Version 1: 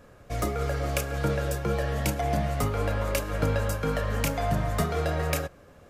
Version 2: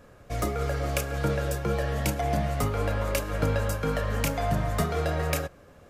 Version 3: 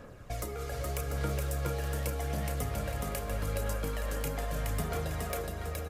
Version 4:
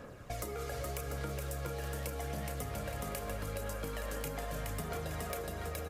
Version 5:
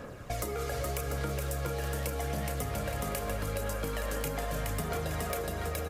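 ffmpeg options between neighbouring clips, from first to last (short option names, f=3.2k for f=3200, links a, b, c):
-af anull
-filter_complex "[0:a]acrossover=split=2300|7800[a][b][c];[a]acompressor=threshold=-38dB:ratio=4[d];[b]acompressor=threshold=-53dB:ratio=4[e];[c]acompressor=threshold=-42dB:ratio=4[f];[d][e][f]amix=inputs=3:normalize=0,aphaser=in_gain=1:out_gain=1:delay=2.5:decay=0.4:speed=0.81:type=sinusoidal,aecho=1:1:420|693|870.4|985.8|1061:0.631|0.398|0.251|0.158|0.1"
-af "lowshelf=f=74:g=-7.5,acompressor=threshold=-36dB:ratio=6,volume=1dB"
-af "asoftclip=type=tanh:threshold=-23dB,volume=5.5dB"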